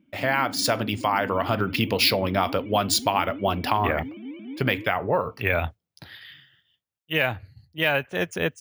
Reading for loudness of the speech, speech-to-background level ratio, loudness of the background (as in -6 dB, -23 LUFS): -24.5 LUFS, 13.5 dB, -38.0 LUFS